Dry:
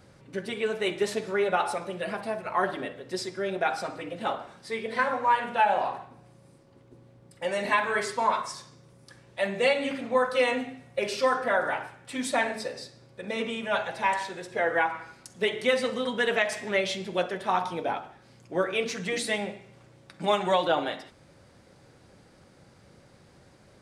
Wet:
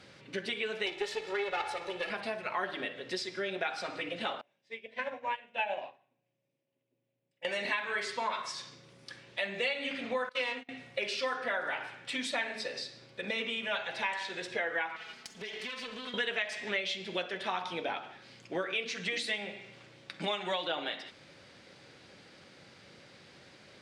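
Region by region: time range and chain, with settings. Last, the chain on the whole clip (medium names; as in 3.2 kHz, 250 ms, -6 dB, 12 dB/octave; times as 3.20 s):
0.86–2.10 s: partial rectifier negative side -12 dB + peaking EQ 710 Hz +5 dB 0.72 oct + comb 2.3 ms
4.41–7.45 s: cabinet simulation 120–8100 Hz, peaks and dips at 130 Hz +9 dB, 270 Hz +4 dB, 590 Hz +8 dB, 1.3 kHz -10 dB, 2.6 kHz +5 dB, 4.4 kHz -9 dB + upward expansion 2.5:1, over -37 dBFS
10.29–10.69 s: peaking EQ 990 Hz +8 dB 0.29 oct + gate -31 dBFS, range -14 dB + power-law waveshaper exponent 1.4
14.96–16.14 s: comb filter that takes the minimum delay 4.6 ms + band-stop 3.8 kHz, Q 30 + compression 16:1, threshold -39 dBFS
whole clip: frequency weighting D; compression 3:1, threshold -33 dBFS; treble shelf 6.5 kHz -11.5 dB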